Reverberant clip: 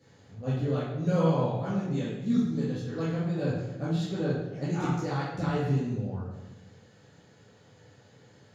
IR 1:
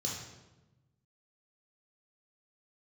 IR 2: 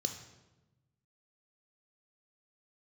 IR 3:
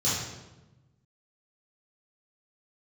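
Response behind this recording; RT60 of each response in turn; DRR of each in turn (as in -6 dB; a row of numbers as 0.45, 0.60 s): 3; 1.1, 1.1, 1.1 s; -2.5, 6.0, -10.5 dB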